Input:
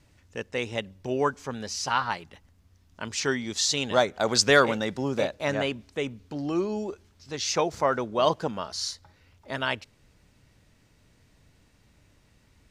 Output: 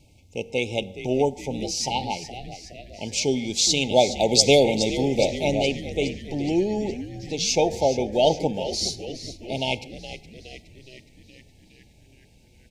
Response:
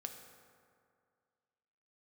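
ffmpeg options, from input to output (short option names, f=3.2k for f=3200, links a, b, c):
-filter_complex "[0:a]asplit=2[a][b];[1:a]atrim=start_sample=2205,afade=t=out:st=0.22:d=0.01,atrim=end_sample=10143[c];[b][c]afir=irnorm=-1:irlink=0,volume=-4dB[d];[a][d]amix=inputs=2:normalize=0,afftfilt=real='re*(1-between(b*sr/4096,910,2100))':imag='im*(1-between(b*sr/4096,910,2100))':win_size=4096:overlap=0.75,asplit=2[e][f];[f]asplit=7[g][h][i][j][k][l][m];[g]adelay=417,afreqshift=-89,volume=-12.5dB[n];[h]adelay=834,afreqshift=-178,volume=-16.8dB[o];[i]adelay=1251,afreqshift=-267,volume=-21.1dB[p];[j]adelay=1668,afreqshift=-356,volume=-25.4dB[q];[k]adelay=2085,afreqshift=-445,volume=-29.7dB[r];[l]adelay=2502,afreqshift=-534,volume=-34dB[s];[m]adelay=2919,afreqshift=-623,volume=-38.3dB[t];[n][o][p][q][r][s][t]amix=inputs=7:normalize=0[u];[e][u]amix=inputs=2:normalize=0,volume=2dB"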